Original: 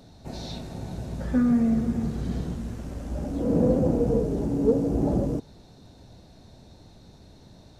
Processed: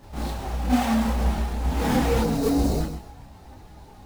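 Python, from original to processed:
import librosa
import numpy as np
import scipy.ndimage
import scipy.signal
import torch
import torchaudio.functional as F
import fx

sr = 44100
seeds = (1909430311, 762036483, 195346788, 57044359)

p1 = fx.halfwave_hold(x, sr)
p2 = fx.peak_eq(p1, sr, hz=810.0, db=13.0, octaves=0.25)
p3 = fx.room_flutter(p2, sr, wall_m=5.4, rt60_s=0.41)
p4 = fx.spec_box(p3, sr, start_s=4.25, length_s=1.14, low_hz=750.0, high_hz=3700.0, gain_db=-12)
p5 = p4 + fx.echo_feedback(p4, sr, ms=253, feedback_pct=30, wet_db=-10.5, dry=0)
p6 = fx.stretch_vocoder(p5, sr, factor=0.52)
p7 = fx.rider(p6, sr, range_db=5, speed_s=0.5)
p8 = p6 + (p7 * 10.0 ** (1.0 / 20.0))
p9 = 10.0 ** (-6.5 / 20.0) * np.tanh(p8 / 10.0 ** (-6.5 / 20.0))
p10 = fx.chorus_voices(p9, sr, voices=4, hz=0.53, base_ms=30, depth_ms=2.6, mix_pct=60)
y = p10 * 10.0 ** (-6.5 / 20.0)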